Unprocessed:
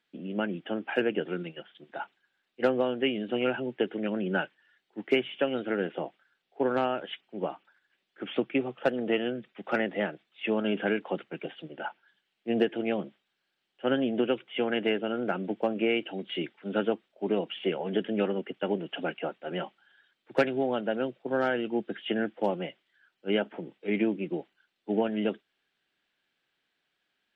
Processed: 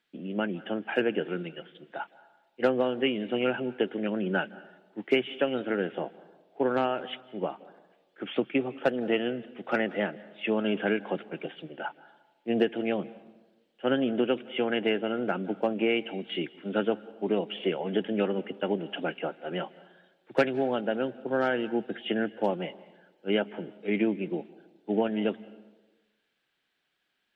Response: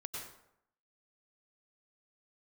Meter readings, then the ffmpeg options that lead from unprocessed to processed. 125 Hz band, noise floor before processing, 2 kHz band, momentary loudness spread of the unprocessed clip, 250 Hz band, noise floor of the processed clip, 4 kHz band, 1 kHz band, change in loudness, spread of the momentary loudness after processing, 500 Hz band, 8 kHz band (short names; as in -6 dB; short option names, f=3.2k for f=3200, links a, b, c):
+0.5 dB, -80 dBFS, +0.5 dB, 12 LU, +0.5 dB, -75 dBFS, +0.5 dB, +0.5 dB, +0.5 dB, 12 LU, +0.5 dB, n/a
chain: -filter_complex "[0:a]asplit=2[a][b];[1:a]atrim=start_sample=2205,asetrate=26901,aresample=44100[c];[b][c]afir=irnorm=-1:irlink=0,volume=-19.5dB[d];[a][d]amix=inputs=2:normalize=0"